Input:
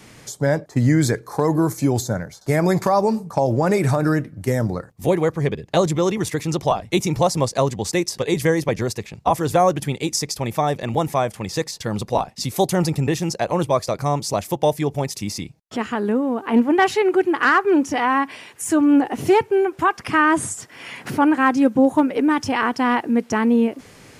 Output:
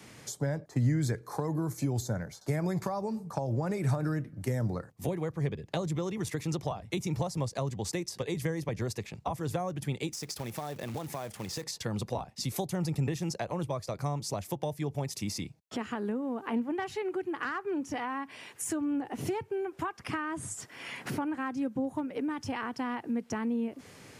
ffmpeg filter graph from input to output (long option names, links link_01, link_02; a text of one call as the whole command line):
ffmpeg -i in.wav -filter_complex "[0:a]asettb=1/sr,asplit=3[link_01][link_02][link_03];[link_01]atrim=end=10.124[link_04];[link_02]atrim=start=10.12:end=11.63,asetpts=PTS-STARTPTS,afade=type=in:duration=0.004:curve=qsin,afade=type=out:start_time=1.506:duration=0.004:curve=qsin,acompressor=threshold=-27dB:ratio=6:attack=3.2:release=140:knee=1:detection=peak,acrusher=bits=3:mode=log:mix=0:aa=0.000001[link_05];[link_03]atrim=start=11.626[link_06];[link_04][link_05]acrossfade=duration=0.004:curve1=hsin:curve2=qsin[link_07];[link_07][link_06]acrossfade=duration=0.004:curve1=qsin:curve2=hsin,acrossover=split=150[link_08][link_09];[link_09]acompressor=threshold=-26dB:ratio=6[link_10];[link_08][link_10]amix=inputs=2:normalize=0,highpass=62,volume=-6dB" out.wav